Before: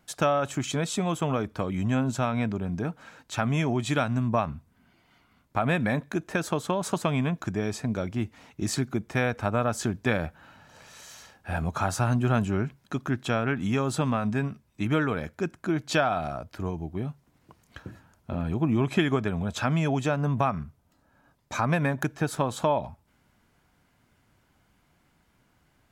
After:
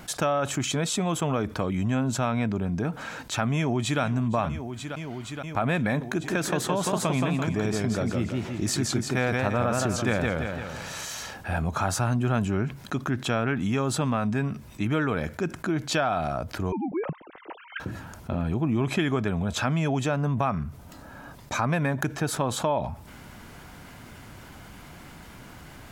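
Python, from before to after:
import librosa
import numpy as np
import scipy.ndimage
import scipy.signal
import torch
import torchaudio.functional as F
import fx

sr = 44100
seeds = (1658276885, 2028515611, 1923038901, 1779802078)

y = fx.echo_throw(x, sr, start_s=3.55, length_s=0.46, ms=470, feedback_pct=85, wet_db=-17.0)
y = fx.echo_warbled(y, sr, ms=169, feedback_pct=35, rate_hz=2.8, cents=124, wet_db=-3.5, at=(6.07, 11.05))
y = fx.sine_speech(y, sr, at=(16.72, 17.8))
y = fx.env_flatten(y, sr, amount_pct=50)
y = y * 10.0 ** (-3.0 / 20.0)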